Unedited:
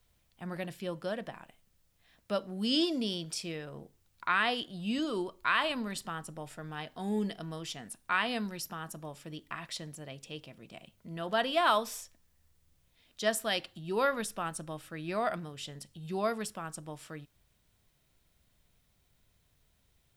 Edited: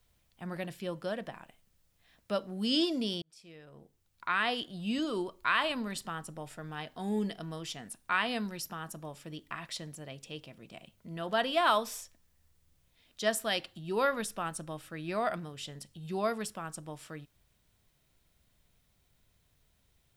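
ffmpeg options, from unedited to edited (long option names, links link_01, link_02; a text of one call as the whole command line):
ffmpeg -i in.wav -filter_complex "[0:a]asplit=2[link_01][link_02];[link_01]atrim=end=3.22,asetpts=PTS-STARTPTS,afade=type=out:start_time=3.216:duration=0.004:curve=hsin[link_03];[link_02]atrim=start=3.22,asetpts=PTS-STARTPTS,afade=type=in:duration=1.41[link_04];[link_03][link_04]concat=n=2:v=0:a=1" out.wav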